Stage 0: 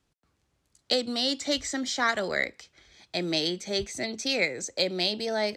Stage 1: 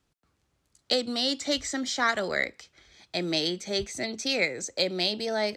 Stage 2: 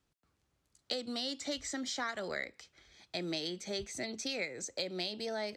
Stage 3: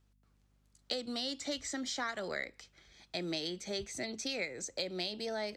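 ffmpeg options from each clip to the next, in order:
-af "equalizer=f=1300:t=o:w=0.23:g=2"
-af "acompressor=threshold=0.0316:ratio=3,volume=0.562"
-af "aeval=exprs='val(0)+0.000316*(sin(2*PI*50*n/s)+sin(2*PI*2*50*n/s)/2+sin(2*PI*3*50*n/s)/3+sin(2*PI*4*50*n/s)/4+sin(2*PI*5*50*n/s)/5)':c=same"

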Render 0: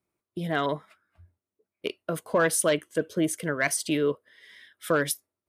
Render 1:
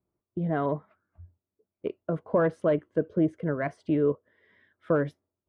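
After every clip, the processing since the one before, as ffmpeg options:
-af "lowpass=1000,lowshelf=f=140:g=8"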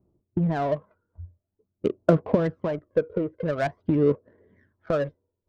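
-af "acompressor=threshold=0.0316:ratio=6,aphaser=in_gain=1:out_gain=1:delay=2.1:decay=0.64:speed=0.47:type=sinusoidal,adynamicsmooth=sensitivity=6.5:basefreq=740,volume=2.37"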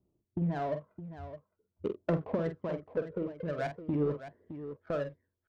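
-af "asoftclip=type=tanh:threshold=0.224,aecho=1:1:47|614:0.376|0.266,volume=0.376"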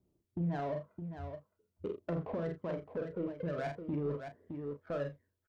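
-filter_complex "[0:a]alimiter=level_in=2:limit=0.0631:level=0:latency=1:release=28,volume=0.501,asplit=2[s0][s1];[s1]adelay=35,volume=0.316[s2];[s0][s2]amix=inputs=2:normalize=0"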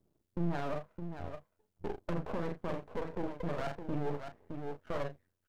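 -af "aeval=exprs='max(val(0),0)':c=same,volume=1.68"

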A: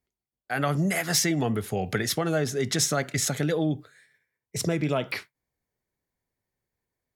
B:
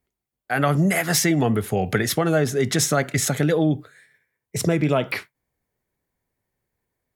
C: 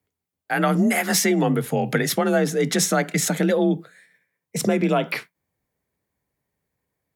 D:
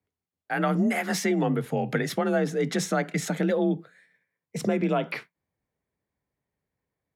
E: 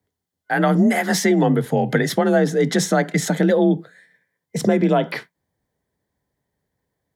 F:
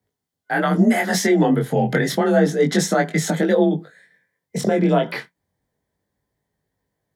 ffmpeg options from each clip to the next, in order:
-af "equalizer=f=5100:t=o:w=1.3:g=-5,volume=2"
-af "afreqshift=35"
-af "lowpass=f=3200:p=1,volume=0.596"
-af "superequalizer=10b=0.631:12b=0.447,volume=2.51"
-af "flanger=delay=19:depth=3.9:speed=0.3,volume=1.41"

